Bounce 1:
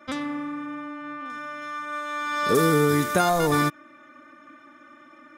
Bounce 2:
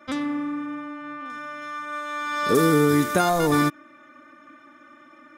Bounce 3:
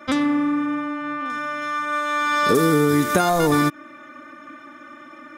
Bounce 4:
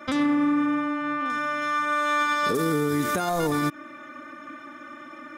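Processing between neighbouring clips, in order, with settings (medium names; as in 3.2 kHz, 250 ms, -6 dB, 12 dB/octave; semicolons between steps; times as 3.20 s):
dynamic bell 290 Hz, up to +4 dB, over -36 dBFS
compression 3:1, threshold -24 dBFS, peak gain reduction 8 dB; trim +8 dB
peak limiter -16 dBFS, peak gain reduction 10.5 dB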